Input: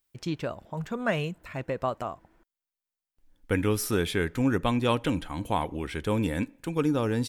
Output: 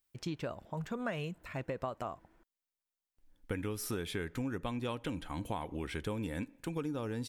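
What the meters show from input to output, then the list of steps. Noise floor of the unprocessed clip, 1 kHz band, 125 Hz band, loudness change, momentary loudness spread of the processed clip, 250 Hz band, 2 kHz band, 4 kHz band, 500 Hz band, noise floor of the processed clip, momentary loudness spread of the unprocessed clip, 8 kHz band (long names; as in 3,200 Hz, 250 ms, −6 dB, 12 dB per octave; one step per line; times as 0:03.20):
below −85 dBFS, −10.0 dB, −9.5 dB, −10.0 dB, 5 LU, −10.5 dB, −10.0 dB, −9.5 dB, −10.5 dB, below −85 dBFS, 9 LU, −8.5 dB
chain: downward compressor 6 to 1, threshold −30 dBFS, peak gain reduction 10.5 dB
level −3.5 dB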